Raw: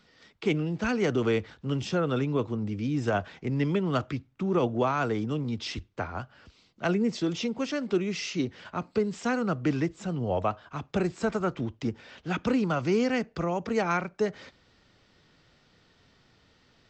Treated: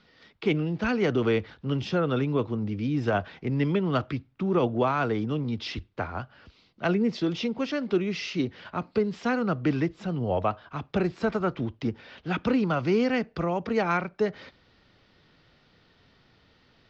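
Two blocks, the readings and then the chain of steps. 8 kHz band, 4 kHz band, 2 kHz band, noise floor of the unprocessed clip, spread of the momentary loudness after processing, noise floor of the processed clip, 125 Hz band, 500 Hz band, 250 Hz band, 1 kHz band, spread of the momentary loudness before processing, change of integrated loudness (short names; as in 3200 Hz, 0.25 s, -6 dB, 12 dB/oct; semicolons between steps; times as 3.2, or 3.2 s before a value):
n/a, +1.0 dB, +1.5 dB, -64 dBFS, 8 LU, -62 dBFS, +1.5 dB, +1.5 dB, +1.5 dB, +1.5 dB, 8 LU, +1.5 dB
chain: LPF 5000 Hz 24 dB/oct; gain +1.5 dB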